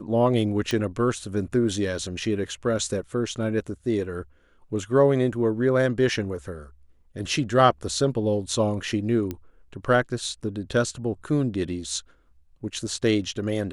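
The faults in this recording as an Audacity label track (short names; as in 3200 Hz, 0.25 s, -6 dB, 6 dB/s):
0.710000	0.710000	pop -13 dBFS
9.310000	9.310000	pop -17 dBFS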